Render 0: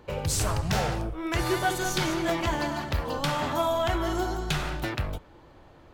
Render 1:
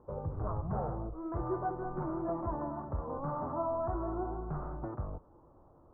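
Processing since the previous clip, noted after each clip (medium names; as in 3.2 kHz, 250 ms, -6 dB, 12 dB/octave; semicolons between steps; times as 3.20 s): elliptic low-pass 1.2 kHz, stop band 60 dB; trim -7 dB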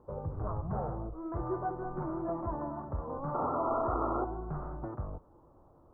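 painted sound noise, 3.34–4.25 s, 230–1400 Hz -34 dBFS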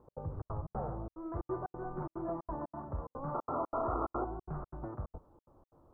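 trance gate "x.xxx.xx.xxx" 181 bpm -60 dB; trim -2.5 dB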